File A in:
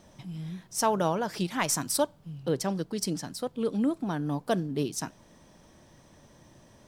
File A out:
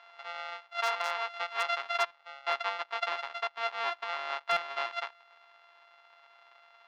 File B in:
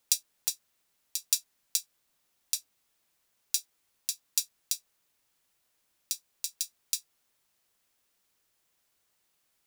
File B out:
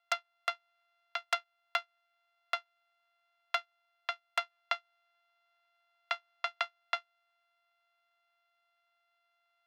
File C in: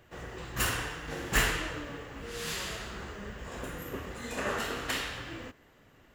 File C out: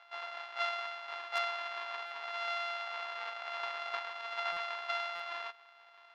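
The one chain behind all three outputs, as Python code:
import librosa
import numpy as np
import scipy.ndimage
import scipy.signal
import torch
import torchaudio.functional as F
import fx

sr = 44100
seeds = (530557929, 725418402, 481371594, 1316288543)

y = np.r_[np.sort(x[:len(x) // 64 * 64].reshape(-1, 64), axis=1).ravel(), x[len(x) // 64 * 64:]]
y = 10.0 ** (-8.0 / 20.0) * np.tanh(y / 10.0 ** (-8.0 / 20.0))
y = scipy.signal.sosfilt(scipy.signal.butter(4, 3900.0, 'lowpass', fs=sr, output='sos'), y)
y = fx.high_shelf(y, sr, hz=2900.0, db=-3.5)
y = 10.0 ** (-16.5 / 20.0) * (np.abs((y / 10.0 ** (-16.5 / 20.0) + 3.0) % 4.0 - 2.0) - 1.0)
y = fx.rider(y, sr, range_db=5, speed_s=0.5)
y = scipy.signal.sosfilt(scipy.signal.cheby1(3, 1.0, 910.0, 'highpass', fs=sr, output='sos'), y)
y = fx.buffer_glitch(y, sr, at_s=(2.06, 4.52, 5.15), block=256, repeats=7)
y = y * 10.0 ** (3.5 / 20.0)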